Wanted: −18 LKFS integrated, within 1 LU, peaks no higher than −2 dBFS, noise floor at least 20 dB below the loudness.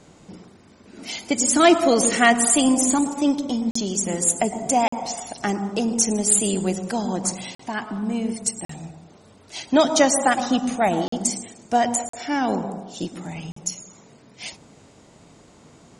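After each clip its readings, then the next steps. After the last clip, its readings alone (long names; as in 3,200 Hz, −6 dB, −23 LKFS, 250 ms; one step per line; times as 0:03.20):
number of dropouts 7; longest dropout 44 ms; integrated loudness −21.0 LKFS; sample peak −2.5 dBFS; target loudness −18.0 LKFS
→ repair the gap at 0:03.71/0:04.88/0:07.55/0:08.65/0:11.08/0:12.09/0:13.52, 44 ms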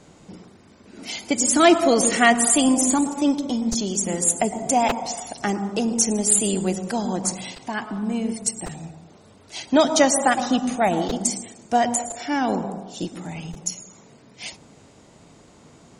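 number of dropouts 0; integrated loudness −21.0 LKFS; sample peak −2.5 dBFS; target loudness −18.0 LKFS
→ level +3 dB
brickwall limiter −2 dBFS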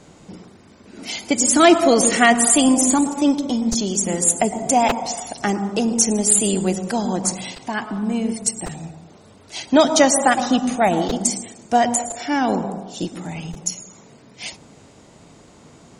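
integrated loudness −18.0 LKFS; sample peak −2.0 dBFS; background noise floor −48 dBFS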